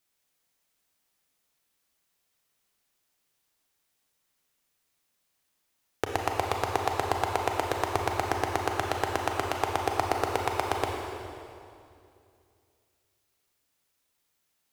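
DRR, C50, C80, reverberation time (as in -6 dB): 0.5 dB, 1.5 dB, 3.0 dB, 2.5 s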